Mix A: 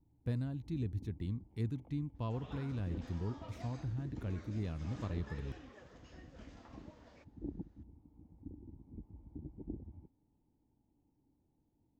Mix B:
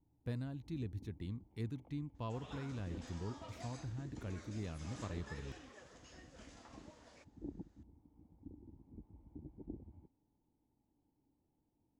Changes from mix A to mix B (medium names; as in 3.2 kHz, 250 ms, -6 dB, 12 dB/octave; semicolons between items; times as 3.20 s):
second sound: remove distance through air 120 m; master: add bass shelf 320 Hz -6 dB